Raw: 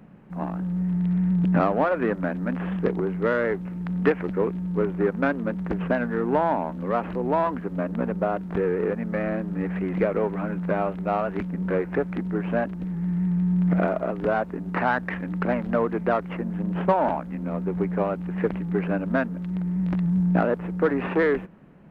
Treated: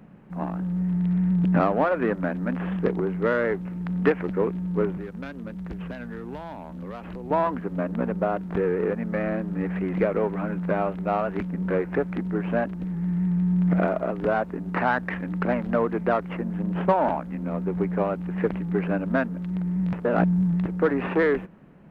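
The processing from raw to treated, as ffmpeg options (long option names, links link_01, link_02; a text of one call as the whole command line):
ffmpeg -i in.wav -filter_complex "[0:a]asettb=1/sr,asplit=3[link_01][link_02][link_03];[link_01]atrim=end=4.974[link_04];[link_02]atrim=start=4.97:end=7.31,asetpts=PTS-STARTPTS,afade=type=in:duration=0.004:curve=qsin,afade=type=out:start_time=2.336:duration=0.004:curve=qsin,acrossover=split=130|3000[link_05][link_06][link_07];[link_06]acompressor=threshold=-36dB:ratio=5:attack=3.2:release=140:knee=2.83:detection=peak[link_08];[link_05][link_08][link_07]amix=inputs=3:normalize=0[link_09];[link_03]atrim=start=7.306[link_10];[link_04][link_09]acrossfade=duration=0.004:curve1=hsin:curve2=qsin[link_11];[link_11][link_10]acrossfade=duration=0.004:curve1=qsin:curve2=hsin,asplit=3[link_12][link_13][link_14];[link_12]atrim=end=19.932[link_15];[link_13]atrim=start=19.928:end=20.662,asetpts=PTS-STARTPTS,areverse[link_16];[link_14]atrim=start=20.658[link_17];[link_15][link_16]acrossfade=duration=0.004:curve1=hsin:curve2=hsin[link_18];[link_18][link_17]acrossfade=duration=0.004:curve1=hsin:curve2=hsin" out.wav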